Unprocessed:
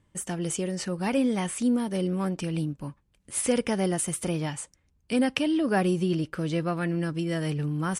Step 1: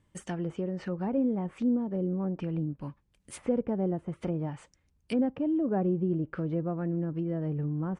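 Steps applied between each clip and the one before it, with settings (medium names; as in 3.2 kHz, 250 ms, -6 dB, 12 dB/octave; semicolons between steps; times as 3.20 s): low-pass that closes with the level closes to 670 Hz, closed at -24 dBFS; trim -2.5 dB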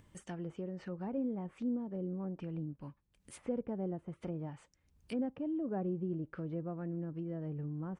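upward compressor, threshold -42 dBFS; trim -8.5 dB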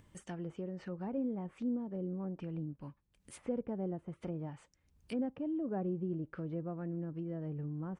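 no audible change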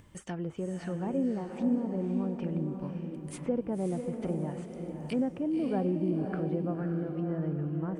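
echo that smears into a reverb 562 ms, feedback 40%, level -5 dB; trim +6 dB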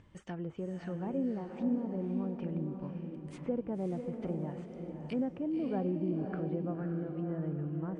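distance through air 110 m; trim -3.5 dB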